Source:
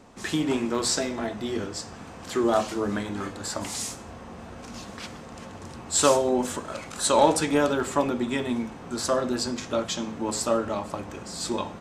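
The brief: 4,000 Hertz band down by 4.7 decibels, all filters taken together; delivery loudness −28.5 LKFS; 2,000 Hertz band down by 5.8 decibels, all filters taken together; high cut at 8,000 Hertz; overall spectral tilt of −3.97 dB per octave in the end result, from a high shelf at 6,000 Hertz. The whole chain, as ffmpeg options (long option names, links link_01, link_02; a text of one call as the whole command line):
ffmpeg -i in.wav -af "lowpass=8000,equalizer=frequency=2000:width_type=o:gain=-7,equalizer=frequency=4000:width_type=o:gain=-7,highshelf=frequency=6000:gain=7.5,volume=-1.5dB" out.wav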